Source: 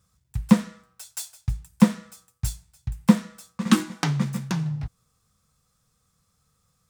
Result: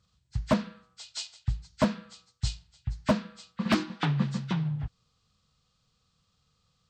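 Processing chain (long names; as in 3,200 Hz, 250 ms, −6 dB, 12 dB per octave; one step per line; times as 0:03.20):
hearing-aid frequency compression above 1,300 Hz 1.5 to 1
wave folding −12 dBFS
level −2.5 dB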